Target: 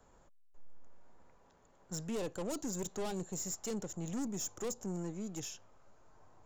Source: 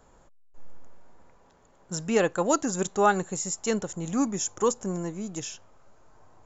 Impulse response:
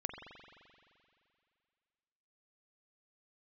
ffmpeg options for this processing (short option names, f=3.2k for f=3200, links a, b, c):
-filter_complex "[0:a]aeval=exprs='(tanh(28.2*val(0)+0.4)-tanh(0.4))/28.2':c=same,acrossover=split=220|870|2900[a][b][c][d];[c]acompressor=threshold=-53dB:ratio=6[e];[a][b][e][d]amix=inputs=4:normalize=0,volume=-5dB"